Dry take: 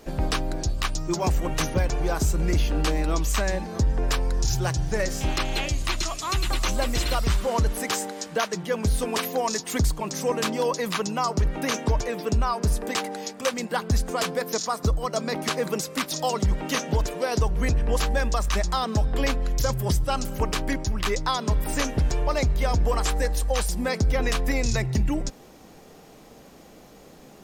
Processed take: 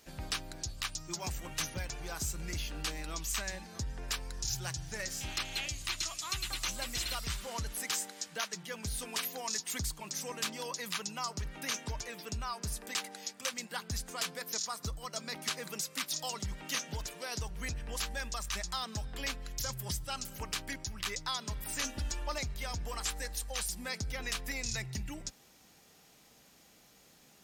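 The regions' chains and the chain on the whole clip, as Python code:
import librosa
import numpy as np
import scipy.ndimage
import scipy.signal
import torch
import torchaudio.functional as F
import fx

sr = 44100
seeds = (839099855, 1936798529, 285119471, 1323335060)

y = fx.chain(x, sr, fx.notch(hz=2200.0, q=8.1),
    fx.comb(ms=3.5, depth=0.82), at=(21.83, 22.38))
y = fx.highpass(y, sr, hz=79.0, slope=6)
y = fx.tone_stack(y, sr, knobs='5-5-5')
y = fx.notch(y, sr, hz=1100.0, q=23.0)
y = F.gain(torch.from_numpy(y), 1.5).numpy()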